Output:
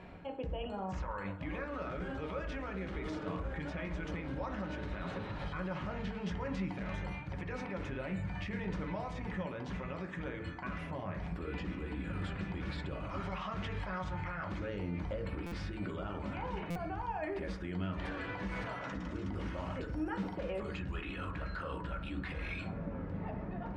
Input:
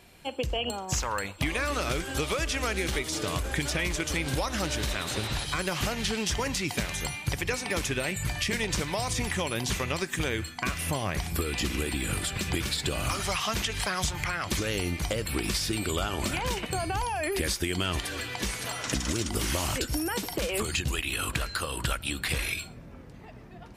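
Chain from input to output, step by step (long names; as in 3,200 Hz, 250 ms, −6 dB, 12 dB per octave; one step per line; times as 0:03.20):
low-pass filter 1,700 Hz 12 dB per octave
reversed playback
downward compressor 6 to 1, threshold −38 dBFS, peak gain reduction 14 dB
reversed playback
brickwall limiter −38.5 dBFS, peak gain reduction 10.5 dB
convolution reverb RT60 0.60 s, pre-delay 3 ms, DRR 2 dB
buffer that repeats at 0:15.46/0:16.70, samples 256, times 9
level +4.5 dB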